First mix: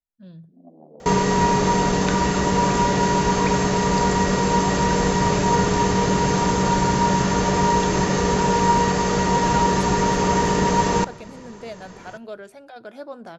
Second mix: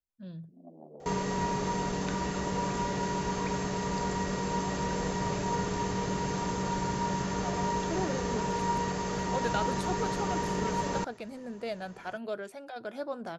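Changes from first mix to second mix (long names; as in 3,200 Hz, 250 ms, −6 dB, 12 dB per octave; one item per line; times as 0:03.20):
second sound −11.5 dB
reverb: off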